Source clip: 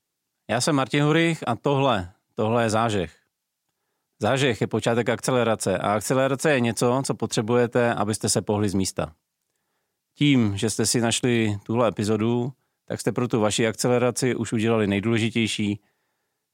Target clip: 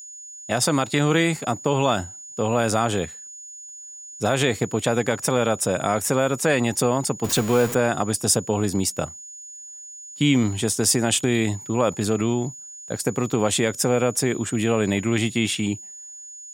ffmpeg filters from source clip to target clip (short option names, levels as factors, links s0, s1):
-filter_complex "[0:a]asettb=1/sr,asplit=3[s0][s1][s2];[s0]atrim=end=7.244[s3];[s1]atrim=start=7.24:end=7.75,asetpts=PTS-STARTPTS,afade=t=in:d=0.004:c=qsin,afade=t=out:st=0.506:d=0.004:c=qsin,aeval=exprs='val(0)+0.5*0.0473*sgn(val(0))':c=same[s4];[s2]atrim=start=7.746[s5];[s3][s4]acrossfade=d=0.004:c1=hsin:c2=qsin[s6];[s6][s5]acrossfade=d=0.004:c1=qsin:c2=hsin,aeval=exprs='val(0)+0.00891*sin(2*PI*6900*n/s)':c=same,highshelf=f=9100:g=10"